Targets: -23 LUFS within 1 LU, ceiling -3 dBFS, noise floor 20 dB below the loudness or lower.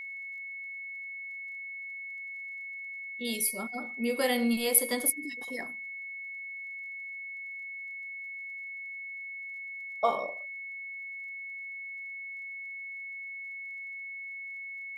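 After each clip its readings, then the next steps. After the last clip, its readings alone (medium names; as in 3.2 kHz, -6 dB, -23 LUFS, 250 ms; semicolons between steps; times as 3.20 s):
tick rate 24 per s; steady tone 2.2 kHz; tone level -38 dBFS; loudness -34.0 LUFS; peak level -5.5 dBFS; loudness target -23.0 LUFS
-> de-click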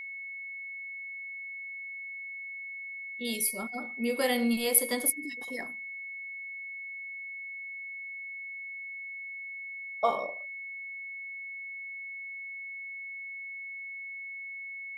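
tick rate 0 per s; steady tone 2.2 kHz; tone level -38 dBFS
-> band-stop 2.2 kHz, Q 30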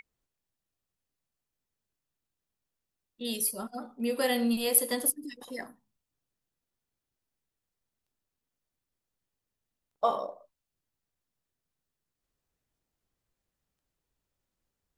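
steady tone not found; loudness -29.0 LUFS; peak level -5.5 dBFS; loudness target -23.0 LUFS
-> trim +6 dB; peak limiter -3 dBFS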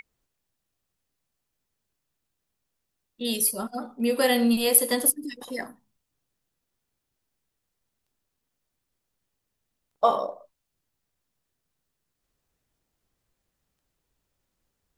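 loudness -23.0 LUFS; peak level -3.0 dBFS; noise floor -81 dBFS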